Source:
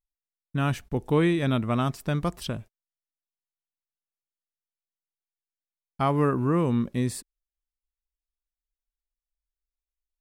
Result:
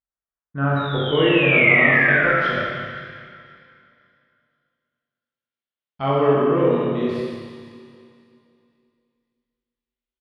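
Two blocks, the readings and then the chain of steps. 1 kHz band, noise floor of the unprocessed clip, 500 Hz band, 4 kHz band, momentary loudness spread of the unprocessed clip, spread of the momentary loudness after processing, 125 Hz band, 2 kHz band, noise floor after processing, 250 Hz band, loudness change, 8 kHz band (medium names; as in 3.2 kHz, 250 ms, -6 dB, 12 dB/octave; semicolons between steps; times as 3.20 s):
+7.0 dB, under -85 dBFS, +10.0 dB, +11.5 dB, 11 LU, 17 LU, +2.0 dB, +21.0 dB, under -85 dBFS, +3.0 dB, +8.5 dB, under -15 dB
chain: graphic EQ with 31 bands 630 Hz +3 dB, 2.5 kHz -4 dB, 8 kHz -11 dB, 12.5 kHz +11 dB; painted sound fall, 0.76–2.37 s, 1.3–3.9 kHz -24 dBFS; doubling 21 ms -5.5 dB; low-pass sweep 1.4 kHz -> 3.1 kHz, 0.41–2.50 s; high-pass 41 Hz; hum notches 60/120/180/240 Hz; on a send: echo whose repeats swap between lows and highs 260 ms, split 1.2 kHz, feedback 53%, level -13 dB; on the sum: Schroeder reverb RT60 2.1 s, combs from 29 ms, DRR -5 dB; dynamic bell 490 Hz, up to +8 dB, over -33 dBFS, Q 1.3; trim -5.5 dB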